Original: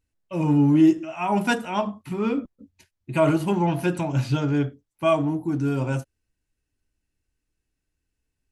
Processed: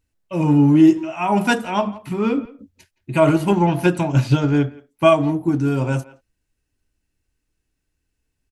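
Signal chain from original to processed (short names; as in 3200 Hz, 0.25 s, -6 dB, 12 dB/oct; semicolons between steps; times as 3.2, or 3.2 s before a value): speakerphone echo 0.17 s, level -19 dB; 3.2–5.61 transient shaper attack +5 dB, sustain -1 dB; gain +4.5 dB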